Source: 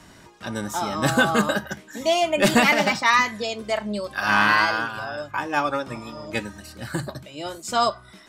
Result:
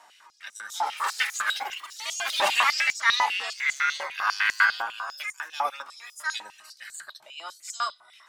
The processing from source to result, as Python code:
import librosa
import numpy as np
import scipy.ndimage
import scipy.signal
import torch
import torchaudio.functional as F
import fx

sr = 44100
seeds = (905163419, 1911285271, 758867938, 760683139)

y = fx.lower_of_two(x, sr, delay_ms=2.2, at=(0.82, 1.36))
y = fx.echo_pitch(y, sr, ms=446, semitones=5, count=3, db_per_echo=-6.0)
y = fx.filter_held_highpass(y, sr, hz=10.0, low_hz=820.0, high_hz=6700.0)
y = y * librosa.db_to_amplitude(-7.5)